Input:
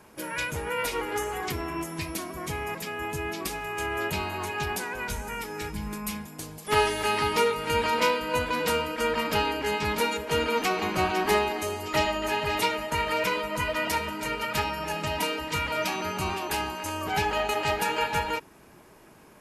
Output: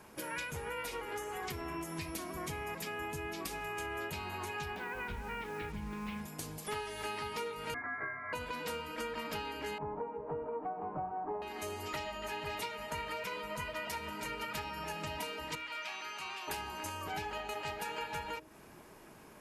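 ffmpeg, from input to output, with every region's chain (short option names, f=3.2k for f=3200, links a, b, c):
-filter_complex "[0:a]asettb=1/sr,asplit=3[a][b][c];[a]atrim=end=4.764[d];[b]atrim=start=4.76:end=6.21,asetpts=PTS-STARTPTS,afade=t=in:d=0.004:c=qsin,afade=t=out:st=1.446:d=0.004:c=qsin,lowpass=f=3.2k:w=0.5412,lowpass=f=3.2k:w=1.3066,acrusher=bits=7:mix=0:aa=0.5[e];[c]atrim=start=6.206[f];[d][e]acrossfade=d=0.004:c1=hsin:c2=qsin[g];[g][f]acrossfade=d=0.004:c1=qsin:c2=hsin,asettb=1/sr,asplit=3[h][i][j];[h]atrim=end=7.744[k];[i]atrim=start=7.74:end=8.33,asetpts=PTS-STARTPTS,afade=t=in:d=0.004:c=qsin,afade=t=out:st=0.586:d=0.004:c=qsin,highpass=770,lowpass=f=2.2k:t=q:w=0.5098,lowpass=f=2.2k:t=q:w=0.6013,lowpass=f=2.2k:t=q:w=0.9,lowpass=f=2.2k:t=q:w=2.563,afreqshift=-2600[l];[j]atrim=start=8.326[m];[k][l]acrossfade=d=0.004:c1=hsin:c2=qsin[n];[n][m]acrossfade=d=0.004:c1=qsin:c2=hsin,asettb=1/sr,asplit=3[o][p][q];[o]atrim=end=9.784[r];[p]atrim=start=9.78:end=11.42,asetpts=PTS-STARTPTS,afade=t=in:d=0.004:c=qsin,afade=t=out:st=1.636:d=0.004:c=qsin,lowpass=f=1.1k:w=0.5412,lowpass=f=1.1k:w=1.3066,equalizer=f=800:t=o:w=1.2:g=5,aecho=1:1:6.8:0.52,atrim=end_sample=72324[s];[q]atrim=start=11.416[t];[r][s]acrossfade=d=0.004:c1=hsin:c2=qsin[u];[u][t]acrossfade=d=0.004:c1=qsin:c2=hsin,asettb=1/sr,asplit=3[v][w][x];[v]atrim=end=15.554[y];[w]atrim=start=15.55:end=16.48,asetpts=PTS-STARTPTS,afade=t=in:d=0.004:c=qsin,afade=t=out:st=0.926:d=0.004:c=qsin,bandpass=f=4.6k:t=q:w=0.64,acrossover=split=3000[z][aa];[aa]acompressor=threshold=-48dB:ratio=4:attack=1:release=60[ab];[z][ab]amix=inputs=2:normalize=0[ac];[x]atrim=start=16.476[ad];[y][ac]acrossfade=d=0.004:c1=hsin:c2=qsin[ae];[ae][ad]acrossfade=d=0.004:c1=qsin:c2=hsin,acompressor=threshold=-35dB:ratio=6,bandreject=f=62.59:t=h:w=4,bandreject=f=125.18:t=h:w=4,bandreject=f=187.77:t=h:w=4,bandreject=f=250.36:t=h:w=4,bandreject=f=312.95:t=h:w=4,bandreject=f=375.54:t=h:w=4,bandreject=f=438.13:t=h:w=4,bandreject=f=500.72:t=h:w=4,bandreject=f=563.31:t=h:w=4,bandreject=f=625.9:t=h:w=4,volume=-2dB"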